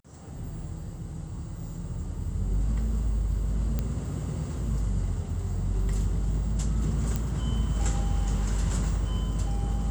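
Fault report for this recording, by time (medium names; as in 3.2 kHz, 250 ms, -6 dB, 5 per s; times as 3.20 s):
3.79 s: pop -16 dBFS
7.16 s: pop -15 dBFS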